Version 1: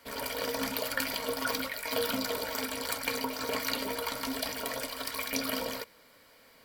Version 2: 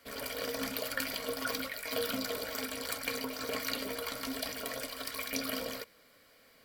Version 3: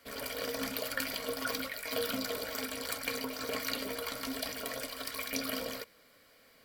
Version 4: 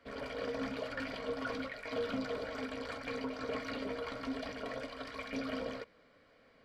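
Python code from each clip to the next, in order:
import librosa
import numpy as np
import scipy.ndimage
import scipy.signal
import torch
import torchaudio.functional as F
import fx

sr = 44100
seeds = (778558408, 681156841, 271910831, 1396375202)

y1 = fx.notch(x, sr, hz=920.0, q=5.6)
y1 = F.gain(torch.from_numpy(y1), -3.0).numpy()
y2 = y1
y3 = np.clip(y2, -10.0 ** (-30.5 / 20.0), 10.0 ** (-30.5 / 20.0))
y3 = fx.spacing_loss(y3, sr, db_at_10k=28)
y3 = F.gain(torch.from_numpy(y3), 2.0).numpy()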